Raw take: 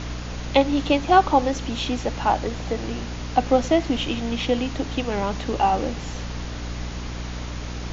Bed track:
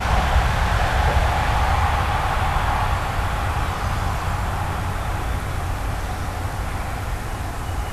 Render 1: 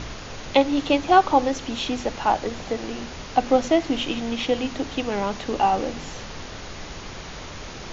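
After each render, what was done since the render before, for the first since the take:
hum removal 60 Hz, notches 5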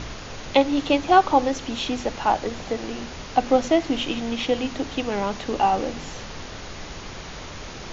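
no processing that can be heard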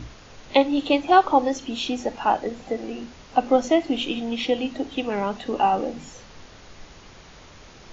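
noise reduction from a noise print 10 dB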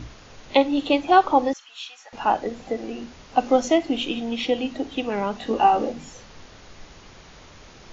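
0:01.53–0:02.13: four-pole ladder high-pass 1,000 Hz, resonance 35%
0:03.37–0:03.78: high-shelf EQ 5,100 Hz +7.5 dB
0:05.39–0:05.92: double-tracking delay 18 ms −3 dB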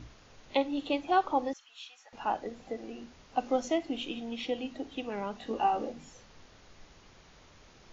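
level −10.5 dB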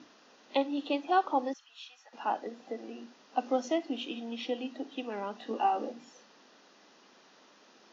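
elliptic band-pass filter 230–5,900 Hz
notch filter 2,200 Hz, Q 9.6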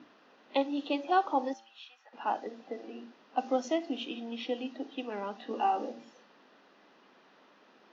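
low-pass that shuts in the quiet parts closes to 2,800 Hz, open at −25.5 dBFS
hum removal 112.9 Hz, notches 8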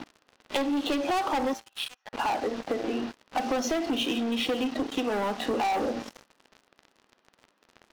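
leveller curve on the samples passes 5
downward compressor, threshold −26 dBFS, peak gain reduction 8.5 dB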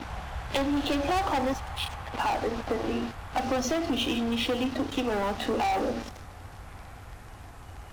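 mix in bed track −18.5 dB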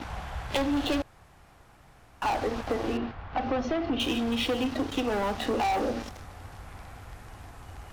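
0:01.02–0:02.22: fill with room tone
0:02.97–0:04.00: high-frequency loss of the air 260 metres

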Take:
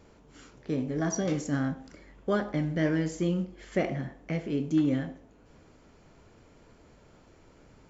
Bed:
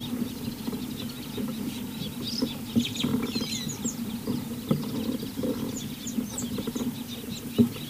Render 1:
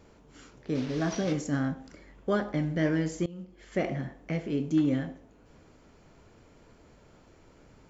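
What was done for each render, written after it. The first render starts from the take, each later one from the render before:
0:00.75–0:01.33: linear delta modulator 32 kbit/s, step −35.5 dBFS
0:03.26–0:03.90: fade in, from −22.5 dB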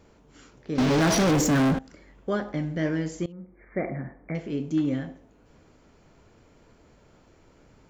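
0:00.78–0:01.79: leveller curve on the samples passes 5
0:03.32–0:04.35: linear-phase brick-wall low-pass 2,400 Hz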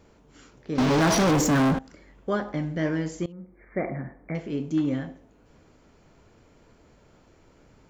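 dynamic equaliser 1,000 Hz, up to +4 dB, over −44 dBFS, Q 1.8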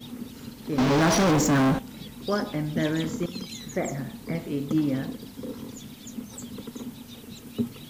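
mix in bed −7 dB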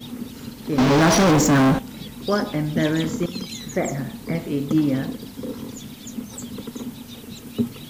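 level +5 dB

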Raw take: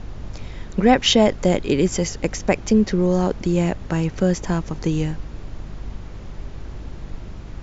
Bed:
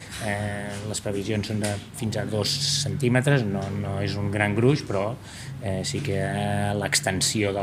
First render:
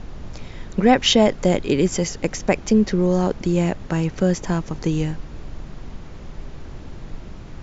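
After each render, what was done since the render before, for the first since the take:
hum removal 50 Hz, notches 2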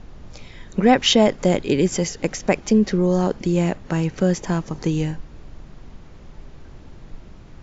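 noise reduction from a noise print 6 dB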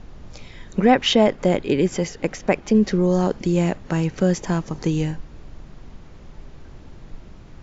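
0:00.86–0:02.75: bass and treble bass −2 dB, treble −8 dB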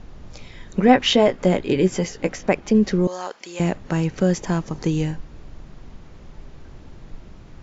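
0:00.86–0:02.48: double-tracking delay 16 ms −8 dB
0:03.07–0:03.60: high-pass filter 880 Hz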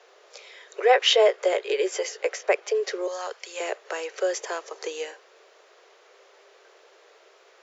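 Butterworth high-pass 400 Hz 72 dB per octave
parametric band 880 Hz −5.5 dB 0.48 octaves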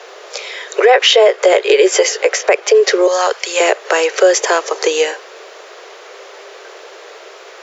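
in parallel at +2.5 dB: downward compressor, threshold −29 dBFS, peak gain reduction 15 dB
on the sum: boost into a limiter +12 dB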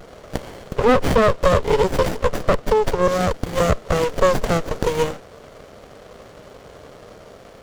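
phaser with its sweep stopped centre 720 Hz, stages 4
windowed peak hold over 33 samples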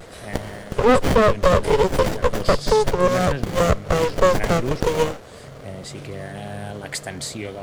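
mix in bed −7.5 dB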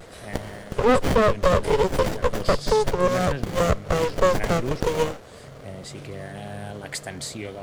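level −3 dB

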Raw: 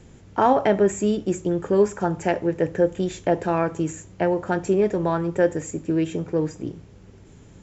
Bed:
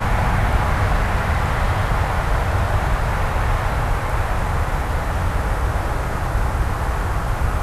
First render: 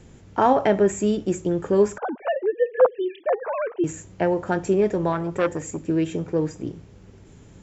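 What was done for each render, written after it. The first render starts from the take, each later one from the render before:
0:01.98–0:03.84: three sine waves on the formant tracks
0:05.12–0:05.83: saturating transformer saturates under 1,100 Hz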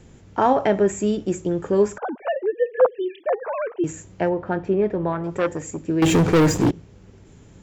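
0:04.29–0:05.24: high-frequency loss of the air 290 metres
0:06.02–0:06.71: leveller curve on the samples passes 5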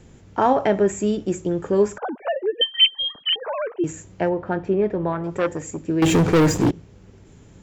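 0:02.61–0:03.36: voice inversion scrambler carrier 3,600 Hz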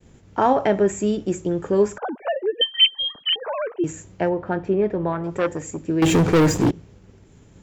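downward expander −44 dBFS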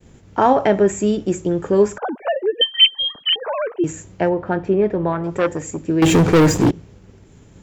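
level +3.5 dB

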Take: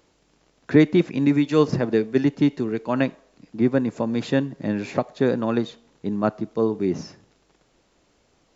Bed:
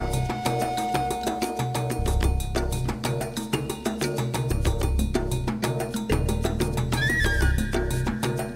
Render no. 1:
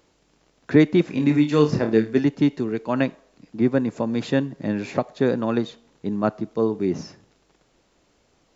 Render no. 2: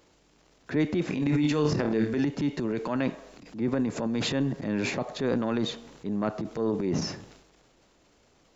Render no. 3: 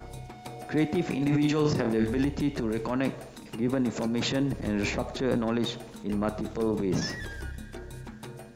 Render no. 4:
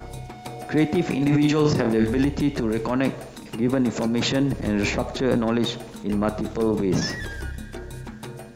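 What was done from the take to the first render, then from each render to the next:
0:01.06–0:02.19: flutter between parallel walls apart 4.6 metres, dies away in 0.25 s
downward compressor 2 to 1, threshold −27 dBFS, peak gain reduction 10 dB; transient designer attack −6 dB, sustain +10 dB
mix in bed −16 dB
level +5.5 dB

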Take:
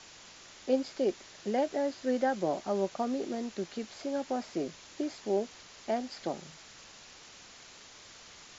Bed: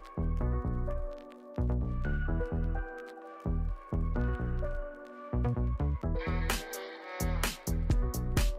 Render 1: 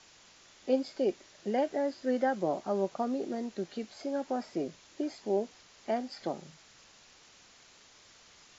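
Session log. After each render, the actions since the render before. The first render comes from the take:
noise reduction from a noise print 6 dB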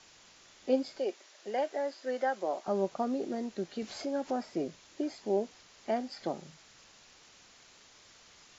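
0:00.99–0:02.68: high-pass filter 480 Hz
0:03.82–0:04.41: upward compression, threshold −34 dBFS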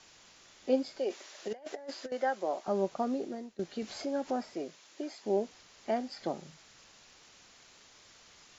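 0:01.09–0:02.12: compressor whose output falls as the input rises −39 dBFS, ratio −0.5
0:03.13–0:03.59: fade out, to −17.5 dB
0:04.54–0:05.26: high-pass filter 480 Hz 6 dB per octave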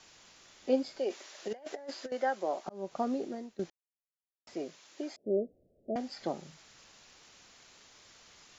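0:02.49–0:02.95: volume swells 366 ms
0:03.70–0:04.47: silence
0:05.16–0:05.96: Butterworth low-pass 630 Hz 72 dB per octave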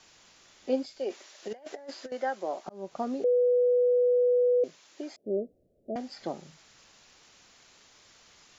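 0:00.86–0:01.43: multiband upward and downward expander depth 40%
0:03.24–0:04.64: beep over 492 Hz −20 dBFS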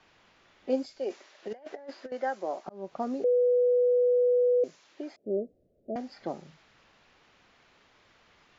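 low-pass that shuts in the quiet parts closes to 2,500 Hz, open at −23.5 dBFS
dynamic equaliser 3,400 Hz, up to −4 dB, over −59 dBFS, Q 1.6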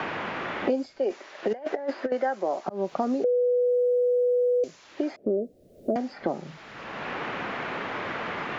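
in parallel at −2 dB: brickwall limiter −26 dBFS, peak gain reduction 9.5 dB
on the sum: multiband upward and downward compressor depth 100%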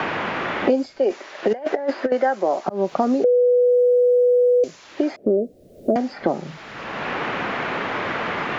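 level +7 dB

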